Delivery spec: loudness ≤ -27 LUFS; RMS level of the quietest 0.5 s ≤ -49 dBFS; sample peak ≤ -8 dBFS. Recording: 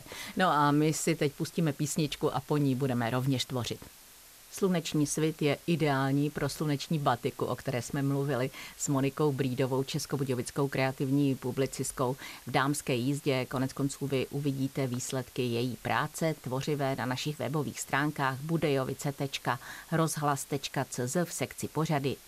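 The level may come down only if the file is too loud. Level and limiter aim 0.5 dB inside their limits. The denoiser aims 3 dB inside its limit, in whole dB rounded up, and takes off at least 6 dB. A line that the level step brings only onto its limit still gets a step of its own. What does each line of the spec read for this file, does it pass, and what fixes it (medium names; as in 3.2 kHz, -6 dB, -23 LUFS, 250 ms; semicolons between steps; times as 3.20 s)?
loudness -31.0 LUFS: pass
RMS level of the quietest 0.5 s -54 dBFS: pass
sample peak -13.0 dBFS: pass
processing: none needed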